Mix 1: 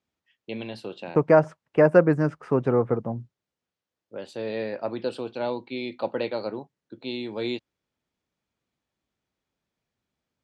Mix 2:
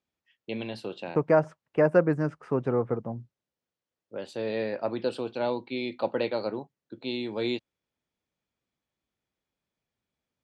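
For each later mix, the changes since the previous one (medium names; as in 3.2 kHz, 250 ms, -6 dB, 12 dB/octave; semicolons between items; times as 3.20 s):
second voice -4.5 dB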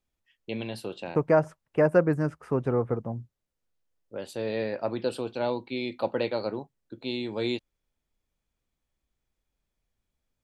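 master: remove band-pass 120–6000 Hz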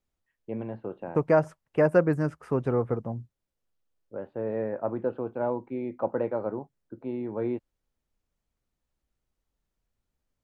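first voice: add low-pass 1.5 kHz 24 dB/octave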